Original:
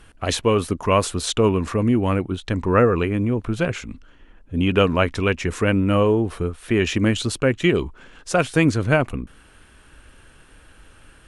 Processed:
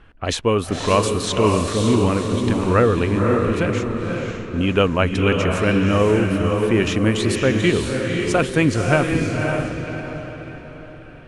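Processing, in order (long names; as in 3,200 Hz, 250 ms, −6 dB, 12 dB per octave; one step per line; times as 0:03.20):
feedback delay with all-pass diffusion 544 ms, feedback 45%, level −3 dB
low-pass that shuts in the quiet parts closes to 2,600 Hz, open at −15.5 dBFS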